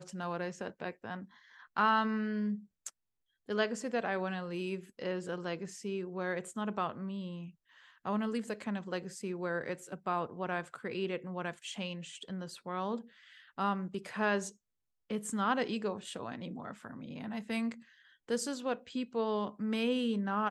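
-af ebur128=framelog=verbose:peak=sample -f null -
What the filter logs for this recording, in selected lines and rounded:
Integrated loudness:
  I:         -36.3 LUFS
  Threshold: -46.7 LUFS
Loudness range:
  LRA:         4.1 LU
  Threshold: -57.2 LUFS
  LRA low:   -38.9 LUFS
  LRA high:  -34.8 LUFS
Sample peak:
  Peak:      -16.9 dBFS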